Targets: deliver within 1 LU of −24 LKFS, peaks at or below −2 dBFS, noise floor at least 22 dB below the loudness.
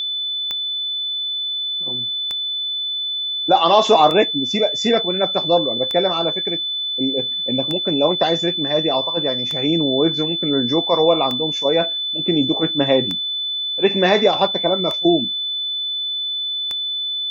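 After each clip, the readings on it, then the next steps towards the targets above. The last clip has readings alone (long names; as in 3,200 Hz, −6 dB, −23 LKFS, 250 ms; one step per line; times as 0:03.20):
number of clicks 10; interfering tone 3,500 Hz; level of the tone −21 dBFS; integrated loudness −18.0 LKFS; sample peak −2.0 dBFS; target loudness −24.0 LKFS
→ click removal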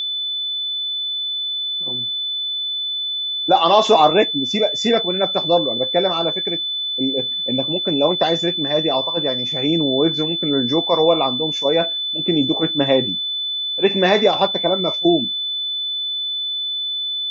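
number of clicks 0; interfering tone 3,500 Hz; level of the tone −21 dBFS
→ notch filter 3,500 Hz, Q 30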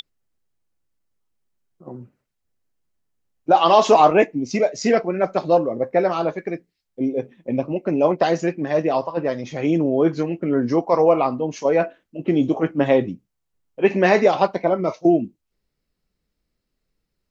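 interfering tone none found; integrated loudness −19.5 LKFS; sample peak −3.0 dBFS; target loudness −24.0 LKFS
→ level −4.5 dB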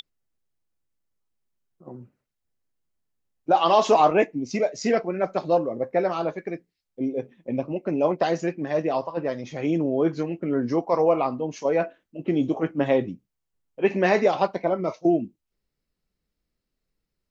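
integrated loudness −24.0 LKFS; sample peak −7.5 dBFS; background noise floor −82 dBFS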